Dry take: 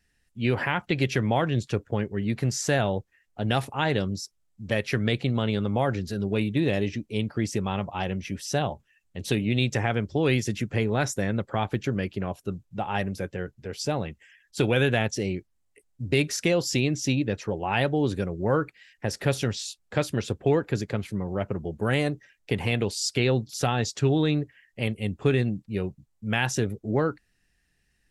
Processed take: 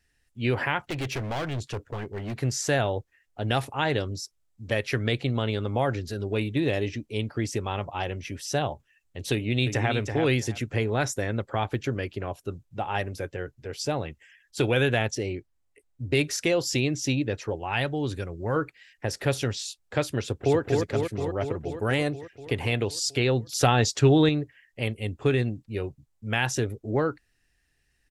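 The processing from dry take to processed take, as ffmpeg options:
-filter_complex "[0:a]asettb=1/sr,asplit=3[s0][s1][s2];[s0]atrim=end=0.874[s3];[s1]atrim=start=0.87:end=2.39,asetpts=PTS-STARTPTS,afade=t=in:d=0.004:c=qsin,afade=t=out:st=1.516:d=0.004:c=qsin,asoftclip=type=hard:threshold=0.0473[s4];[s2]atrim=start=2.386[s5];[s3][s4]acrossfade=d=0.004:c1=hsin:c2=qsin[s6];[s6][s5]acrossfade=d=0.004:c1=qsin:c2=hsin,asplit=2[s7][s8];[s8]afade=t=in:st=9.33:d=0.01,afade=t=out:st=9.93:d=0.01,aecho=0:1:330|660|990:0.473151|0.0946303|0.0189261[s9];[s7][s9]amix=inputs=2:normalize=0,asettb=1/sr,asplit=3[s10][s11][s12];[s10]atrim=end=15.154[s13];[s11]atrim=start=15.15:end=16.15,asetpts=PTS-STARTPTS,afade=t=in:d=0.004:c=qsin,afade=t=out:st=0.996:d=0.004:c=qsin,highshelf=f=4200:g=-5.5[s14];[s12]atrim=start=16.146[s15];[s13][s14]acrossfade=d=0.004:c1=hsin:c2=qsin[s16];[s16][s15]acrossfade=d=0.004:c1=qsin:c2=hsin,asettb=1/sr,asplit=3[s17][s18][s19];[s17]atrim=end=17.554[s20];[s18]atrim=start=17.55:end=18.56,asetpts=PTS-STARTPTS,afade=t=in:d=0.004:c=qsin,afade=t=out:st=1.006:d=0.004:c=qsin,equalizer=f=480:w=0.57:g=-5[s21];[s19]atrim=start=18.556[s22];[s20][s21]acrossfade=d=0.004:c1=hsin:c2=qsin[s23];[s23][s22]acrossfade=d=0.004:c1=qsin:c2=hsin,asplit=2[s24][s25];[s25]afade=t=in:st=20.19:d=0.01,afade=t=out:st=20.59:d=0.01,aecho=0:1:240|480|720|960|1200|1440|1680|1920|2160|2400|2640|2880:0.630957|0.473218|0.354914|0.266185|0.199639|0.149729|0.112297|0.0842226|0.063167|0.0473752|0.0355314|0.0266486[s26];[s24][s26]amix=inputs=2:normalize=0,asplit=3[s27][s28][s29];[s27]atrim=end=23.472[s30];[s28]atrim=start=23.468:end=24.292,asetpts=PTS-STARTPTS,volume=1.78[s31];[s29]atrim=start=24.288[s32];[s30][s31]acrossfade=d=0.004:c1=hsin:c2=hsin[s33];[s33][s32]acrossfade=d=0.004:c1=hsin:c2=hsin,equalizer=f=190:t=o:w=0.28:g=-13.5"

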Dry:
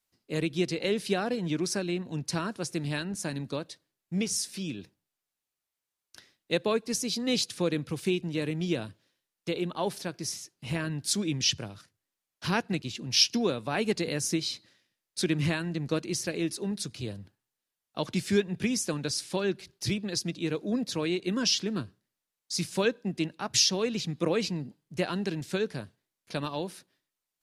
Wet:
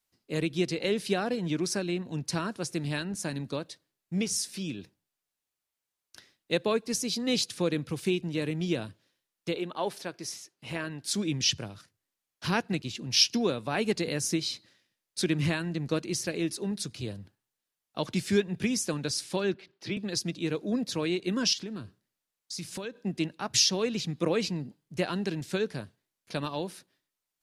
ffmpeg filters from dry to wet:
-filter_complex "[0:a]asettb=1/sr,asplit=3[s0][s1][s2];[s0]atrim=end=9.554[s3];[s1]atrim=start=9.55:end=11.14,asetpts=PTS-STARTPTS,afade=t=in:d=0.004:c=qsin,afade=t=out:st=1.586:d=0.004:c=qsin,bass=f=250:g=-9,treble=f=4000:g=-4[s4];[s2]atrim=start=11.136[s5];[s3][s4]acrossfade=d=0.004:c1=hsin:c2=qsin[s6];[s6][s5]acrossfade=d=0.004:c1=qsin:c2=hsin,asettb=1/sr,asplit=3[s7][s8][s9];[s7]atrim=end=19.544[s10];[s8]atrim=start=19.54:end=19.97,asetpts=PTS-STARTPTS,afade=t=in:d=0.004:c=qsin,afade=t=out:st=0.426:d=0.004:c=qsin,acrossover=split=180 3800:gain=0.0891 1 0.0794[s11][s12][s13];[s11][s12][s13]amix=inputs=3:normalize=0[s14];[s9]atrim=start=19.966[s15];[s10][s14]acrossfade=d=0.004:c1=hsin:c2=qsin[s16];[s16][s15]acrossfade=d=0.004:c1=qsin:c2=hsin,asettb=1/sr,asplit=3[s17][s18][s19];[s17]atrim=end=21.534[s20];[s18]atrim=start=21.53:end=22.98,asetpts=PTS-STARTPTS,afade=t=in:d=0.004:c=qsin,afade=t=out:st=1.446:d=0.004:c=qsin,acompressor=threshold=0.02:ratio=5:attack=3.2:release=140:knee=1:detection=peak[s21];[s19]atrim=start=22.976[s22];[s20][s21]acrossfade=d=0.004:c1=hsin:c2=qsin[s23];[s23][s22]acrossfade=d=0.004:c1=qsin:c2=hsin"

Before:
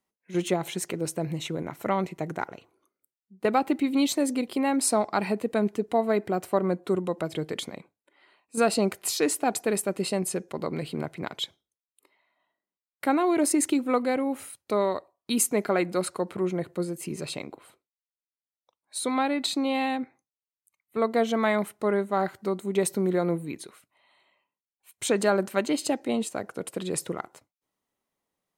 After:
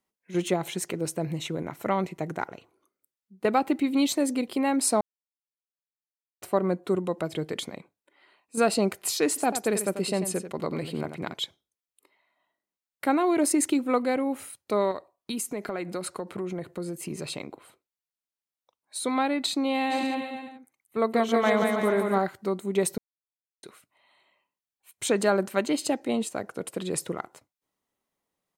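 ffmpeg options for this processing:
-filter_complex "[0:a]asplit=3[s0][s1][s2];[s0]afade=t=out:st=9.36:d=0.02[s3];[s1]aecho=1:1:90:0.316,afade=t=in:st=9.36:d=0.02,afade=t=out:st=11.33:d=0.02[s4];[s2]afade=t=in:st=11.33:d=0.02[s5];[s3][s4][s5]amix=inputs=3:normalize=0,asettb=1/sr,asplit=3[s6][s7][s8];[s6]atrim=end=14.914[s9];[s7]atrim=start=14.91:end=19.06,asetpts=PTS-STARTPTS,afade=t=in:d=0.004:c=qsin,afade=t=out:st=4.146:d=0.004:c=qsin,acompressor=threshold=0.0398:ratio=6:attack=3.2:release=140:knee=1:detection=peak[s10];[s8]atrim=start=19.056[s11];[s9][s10]acrossfade=d=0.004:c1=hsin:c2=qsin[s12];[s12][s11]acrossfade=d=0.004:c1=qsin:c2=hsin,asplit=3[s13][s14][s15];[s13]afade=t=out:st=19.9:d=0.02[s16];[s14]aecho=1:1:180|324|439.2|531.4|605.1:0.631|0.398|0.251|0.158|0.1,afade=t=in:st=19.9:d=0.02,afade=t=out:st=22.17:d=0.02[s17];[s15]afade=t=in:st=22.17:d=0.02[s18];[s16][s17][s18]amix=inputs=3:normalize=0,asplit=5[s19][s20][s21][s22][s23];[s19]atrim=end=5.01,asetpts=PTS-STARTPTS,afade=t=out:st=5.006:d=0.004:c=hsin[s24];[s20]atrim=start=5.01:end=6.42,asetpts=PTS-STARTPTS,volume=0[s25];[s21]atrim=start=6.42:end=22.98,asetpts=PTS-STARTPTS,afade=t=in:d=0.004:c=hsin,afade=t=out:st=16.556:d=0.004:c=hsin[s26];[s22]atrim=start=22.98:end=23.63,asetpts=PTS-STARTPTS,volume=0[s27];[s23]atrim=start=23.63,asetpts=PTS-STARTPTS,afade=t=in:d=0.004:c=hsin[s28];[s24][s25][s26][s27][s28]concat=n=5:v=0:a=1"

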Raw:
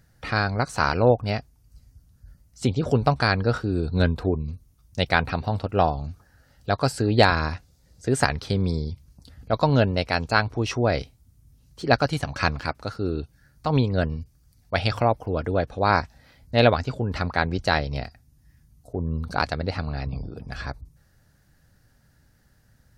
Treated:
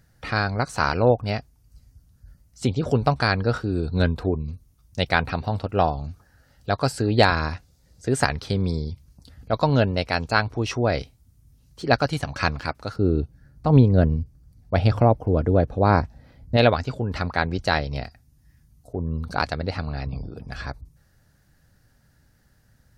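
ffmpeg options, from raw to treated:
-filter_complex "[0:a]asettb=1/sr,asplit=3[s0][s1][s2];[s0]atrim=end=12.964[s3];[s1]atrim=start=12.96:end=16.57,asetpts=PTS-STARTPTS,afade=t=in:d=0.004:c=qsin,afade=t=out:st=3.606:d=0.004:c=qsin,tiltshelf=f=900:g=7.5[s4];[s2]atrim=start=16.566[s5];[s3][s4]acrossfade=d=0.004:c1=hsin:c2=qsin[s6];[s6][s5]acrossfade=d=0.004:c1=qsin:c2=hsin"

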